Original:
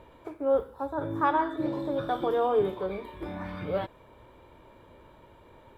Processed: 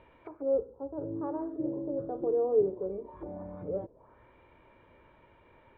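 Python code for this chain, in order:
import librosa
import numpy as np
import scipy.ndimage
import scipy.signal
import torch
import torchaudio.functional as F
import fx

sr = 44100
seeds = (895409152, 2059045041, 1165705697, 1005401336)

y = fx.envelope_lowpass(x, sr, base_hz=460.0, top_hz=2900.0, q=2.2, full_db=-31.5, direction='down')
y = y * librosa.db_to_amplitude(-7.0)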